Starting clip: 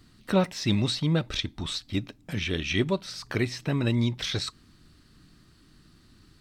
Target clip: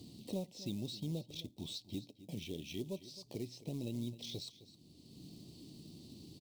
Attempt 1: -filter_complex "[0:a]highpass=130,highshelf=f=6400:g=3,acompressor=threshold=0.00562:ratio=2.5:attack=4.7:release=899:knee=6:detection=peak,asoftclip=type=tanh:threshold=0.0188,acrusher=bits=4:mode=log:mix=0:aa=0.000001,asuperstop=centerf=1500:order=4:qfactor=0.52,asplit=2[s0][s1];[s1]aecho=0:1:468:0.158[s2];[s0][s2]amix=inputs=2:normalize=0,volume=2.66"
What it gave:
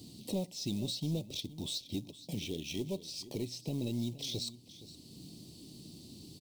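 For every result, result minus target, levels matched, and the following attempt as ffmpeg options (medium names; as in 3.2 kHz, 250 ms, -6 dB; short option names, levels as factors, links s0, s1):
echo 205 ms late; compression: peak gain reduction -6 dB; 8 kHz band +3.0 dB
-filter_complex "[0:a]highpass=130,highshelf=f=6400:g=3,acompressor=threshold=0.00562:ratio=2.5:attack=4.7:release=899:knee=6:detection=peak,asoftclip=type=tanh:threshold=0.0188,acrusher=bits=4:mode=log:mix=0:aa=0.000001,asuperstop=centerf=1500:order=4:qfactor=0.52,asplit=2[s0][s1];[s1]aecho=0:1:263:0.158[s2];[s0][s2]amix=inputs=2:normalize=0,volume=2.66"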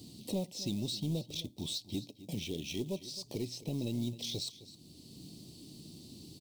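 compression: peak gain reduction -6 dB; 8 kHz band +3.0 dB
-filter_complex "[0:a]highpass=130,highshelf=f=6400:g=3,acompressor=threshold=0.00178:ratio=2.5:attack=4.7:release=899:knee=6:detection=peak,asoftclip=type=tanh:threshold=0.0188,acrusher=bits=4:mode=log:mix=0:aa=0.000001,asuperstop=centerf=1500:order=4:qfactor=0.52,asplit=2[s0][s1];[s1]aecho=0:1:263:0.158[s2];[s0][s2]amix=inputs=2:normalize=0,volume=2.66"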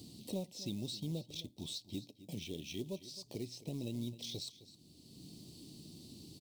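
8 kHz band +3.5 dB
-filter_complex "[0:a]highpass=130,highshelf=f=6400:g=-7.5,acompressor=threshold=0.00178:ratio=2.5:attack=4.7:release=899:knee=6:detection=peak,asoftclip=type=tanh:threshold=0.0188,acrusher=bits=4:mode=log:mix=0:aa=0.000001,asuperstop=centerf=1500:order=4:qfactor=0.52,asplit=2[s0][s1];[s1]aecho=0:1:263:0.158[s2];[s0][s2]amix=inputs=2:normalize=0,volume=2.66"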